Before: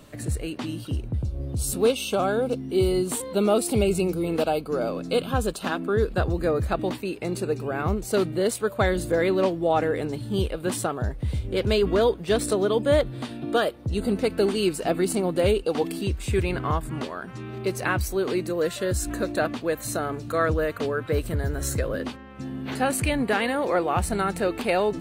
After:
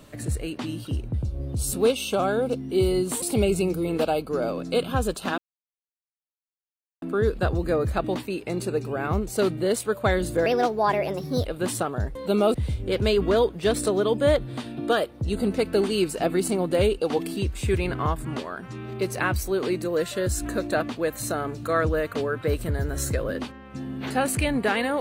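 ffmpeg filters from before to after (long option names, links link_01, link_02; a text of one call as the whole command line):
ffmpeg -i in.wav -filter_complex "[0:a]asplit=7[link_01][link_02][link_03][link_04][link_05][link_06][link_07];[link_01]atrim=end=3.222[link_08];[link_02]atrim=start=3.608:end=5.77,asetpts=PTS-STARTPTS,afade=type=out:start_time=2.158:duration=0.004:curve=hsin,apad=pad_dur=1.64[link_09];[link_03]atrim=start=5.77:end=9.214,asetpts=PTS-STARTPTS,afade=type=in:duration=0.004:curve=hsin[link_10];[link_04]atrim=start=9.21:end=10.49,asetpts=PTS-STARTPTS,asetrate=56889,aresample=44100,atrim=end_sample=43758,asetpts=PTS-STARTPTS[link_11];[link_05]atrim=start=10.486:end=11.192[link_12];[link_06]atrim=start=3.218:end=3.612[link_13];[link_07]atrim=start=11.188[link_14];[link_09][link_10]concat=n=2:v=0:a=1[link_15];[link_08][link_15]acrossfade=duration=0.004:curve1=hsin:curve2=hsin[link_16];[link_16][link_11]acrossfade=duration=0.004:curve1=hsin:curve2=hsin[link_17];[link_17][link_12]acrossfade=duration=0.004:curve1=hsin:curve2=hsin[link_18];[link_18][link_13]acrossfade=duration=0.004:curve1=hsin:curve2=hsin[link_19];[link_19][link_14]acrossfade=duration=0.004:curve1=hsin:curve2=hsin" out.wav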